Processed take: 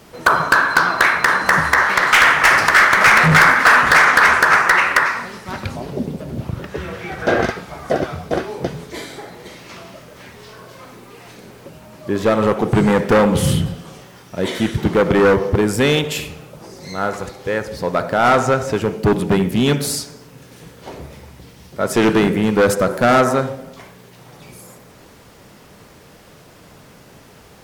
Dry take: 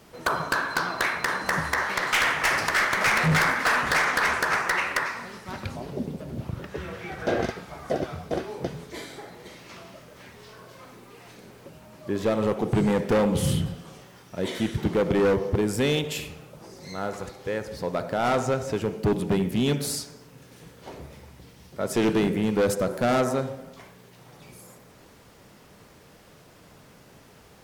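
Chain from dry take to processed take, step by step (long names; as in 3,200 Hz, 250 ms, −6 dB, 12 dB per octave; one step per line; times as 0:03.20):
dynamic equaliser 1,400 Hz, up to +6 dB, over −38 dBFS, Q 1.1
level +7.5 dB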